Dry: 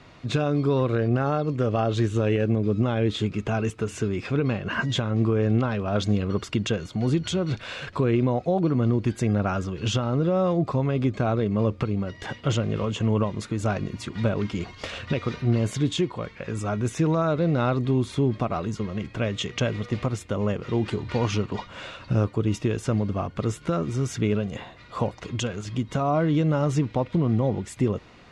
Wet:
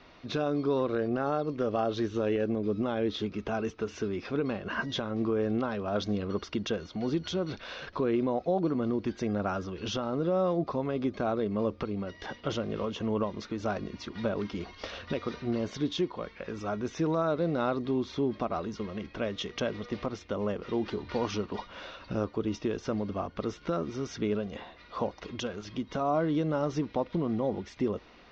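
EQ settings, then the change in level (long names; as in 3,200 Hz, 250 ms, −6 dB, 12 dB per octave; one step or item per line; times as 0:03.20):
dynamic equaliser 2,500 Hz, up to −5 dB, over −45 dBFS, Q 1.6
Chebyshev low-pass filter 5,900 Hz, order 5
parametric band 120 Hz −14.5 dB 0.83 octaves
−3.0 dB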